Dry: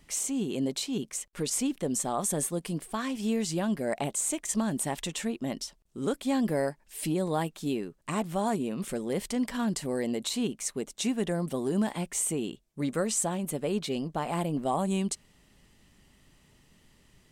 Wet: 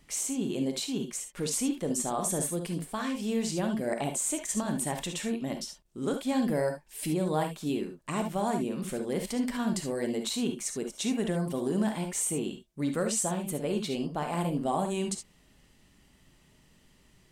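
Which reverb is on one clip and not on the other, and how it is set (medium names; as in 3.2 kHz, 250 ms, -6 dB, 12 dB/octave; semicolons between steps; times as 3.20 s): gated-style reverb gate 90 ms rising, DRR 5 dB; trim -1.5 dB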